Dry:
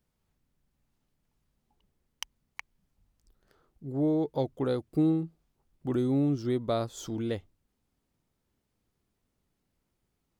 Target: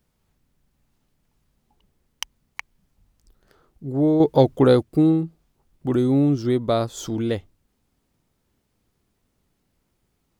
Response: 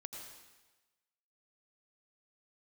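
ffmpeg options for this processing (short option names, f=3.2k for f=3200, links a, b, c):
-filter_complex "[0:a]asettb=1/sr,asplit=3[a][b][c];[a]atrim=end=4.204[d];[b]atrim=start=4.2:end=4.83,asetpts=PTS-STARTPTS,afade=t=in:d=0.004:c=qsin,afade=t=out:st=0.626:d=0.004:c=qsin,acontrast=60[e];[c]atrim=start=4.826[f];[d][e]acrossfade=d=0.004:c1=hsin:c2=qsin[g];[g][f]acrossfade=d=0.004:c1=qsin:c2=hsin,volume=8dB"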